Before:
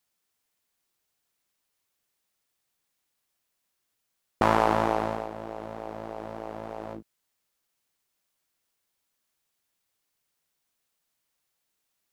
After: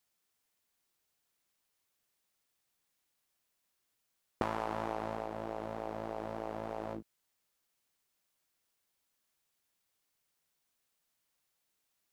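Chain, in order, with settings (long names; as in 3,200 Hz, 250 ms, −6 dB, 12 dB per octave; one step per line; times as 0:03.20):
downward compressor 6 to 1, threshold −29 dBFS, peak gain reduction 13 dB
level −2 dB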